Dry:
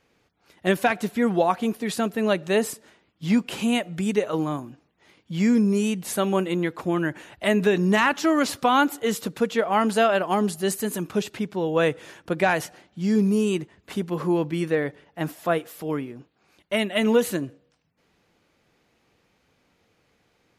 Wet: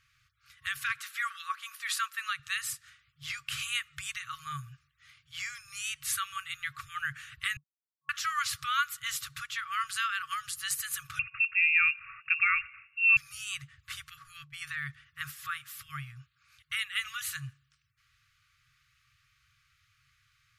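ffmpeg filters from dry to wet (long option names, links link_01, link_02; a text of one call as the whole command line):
ffmpeg -i in.wav -filter_complex "[0:a]asettb=1/sr,asplit=3[link_01][link_02][link_03];[link_01]atrim=end=0.984[link_04];[link_02]atrim=start=0.98:end=2.4,asetpts=PTS-STARTPTS,afade=type=in:duration=0.004:curve=qsin,afade=type=out:start_time=1.416:duration=0.004:curve=qsin,highpass=frequency=820:width_type=q:width=1.7[link_05];[link_03]atrim=start=2.396[link_06];[link_04][link_05]acrossfade=duration=0.004:curve1=hsin:curve2=qsin[link_07];[link_07][link_06]acrossfade=duration=0.004:curve1=qsin:curve2=hsin,asettb=1/sr,asplit=3[link_08][link_09][link_10];[link_08]atrim=end=11.194[link_11];[link_09]atrim=start=11.19:end=13.17,asetpts=PTS-STARTPTS,afade=type=in:duration=0.004:curve=qsin,afade=type=out:start_time=1.976:duration=0.004:curve=qsin,lowpass=frequency=2500:width_type=q:width=0.5098,lowpass=frequency=2500:width_type=q:width=0.6013,lowpass=frequency=2500:width_type=q:width=0.9,lowpass=frequency=2500:width_type=q:width=2.563,afreqshift=-2900[link_12];[link_10]atrim=start=13.166[link_13];[link_11][link_12]acrossfade=duration=0.004:curve1=hsin:curve2=qsin[link_14];[link_14][link_13]acrossfade=duration=0.004:curve1=qsin:curve2=hsin,asplit=3[link_15][link_16][link_17];[link_15]afade=type=out:start_time=14.13:duration=0.02[link_18];[link_16]agate=range=-33dB:threshold=-22dB:ratio=3:release=100:detection=peak,afade=type=in:start_time=14.13:duration=0.02,afade=type=out:start_time=14.61:duration=0.02[link_19];[link_17]afade=type=in:start_time=14.61:duration=0.02[link_20];[link_18][link_19][link_20]amix=inputs=3:normalize=0,asplit=3[link_21][link_22][link_23];[link_21]atrim=end=7.57,asetpts=PTS-STARTPTS,afade=type=out:start_time=7.566:duration=0.004:curve=hsin[link_24];[link_22]atrim=start=7.57:end=8.09,asetpts=PTS-STARTPTS,volume=0[link_25];[link_23]atrim=start=8.09,asetpts=PTS-STARTPTS,afade=type=in:duration=0.004:curve=hsin[link_26];[link_24][link_25][link_26]concat=n=3:v=0:a=1,alimiter=limit=-15dB:level=0:latency=1:release=296,afftfilt=real='re*(1-between(b*sr/4096,140,1100))':imag='im*(1-between(b*sr/4096,140,1100))':win_size=4096:overlap=0.75" out.wav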